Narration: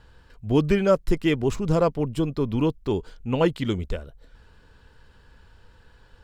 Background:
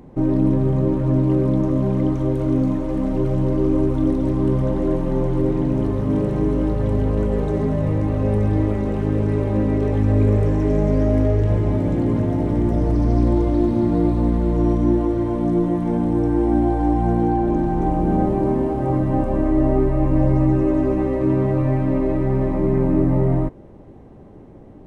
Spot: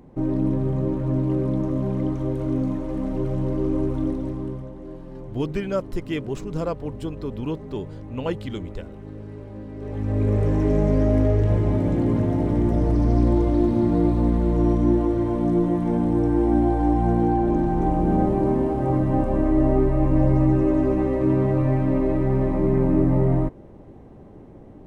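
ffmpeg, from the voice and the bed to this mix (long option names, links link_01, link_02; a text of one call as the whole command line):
ffmpeg -i stem1.wav -i stem2.wav -filter_complex "[0:a]adelay=4850,volume=-6dB[link_01];[1:a]volume=11dB,afade=type=out:start_time=3.97:duration=0.73:silence=0.237137,afade=type=in:start_time=9.74:duration=0.84:silence=0.158489[link_02];[link_01][link_02]amix=inputs=2:normalize=0" out.wav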